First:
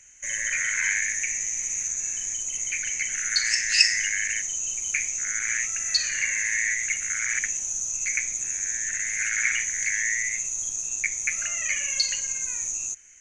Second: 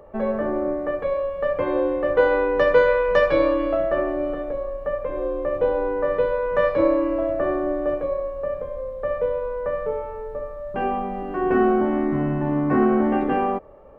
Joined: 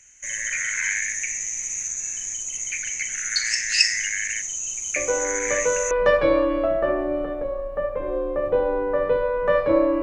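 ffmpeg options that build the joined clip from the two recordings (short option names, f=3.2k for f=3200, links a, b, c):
-filter_complex "[1:a]asplit=2[a][b];[0:a]apad=whole_dur=10.02,atrim=end=10.02,atrim=end=5.912[c];[b]atrim=start=2.998:end=7.11[d];[a]atrim=start=2.05:end=3,asetpts=PTS-STARTPTS,volume=-7dB,afade=t=in:d=0.004:c=hsin,afade=t=out:st=0.946:d=0.004:c=hsin,adelay=4960[e];[c][d]acrossfade=d=0.004:c1=hsin:c2=hsin[f];[f][e]amix=inputs=2:normalize=0"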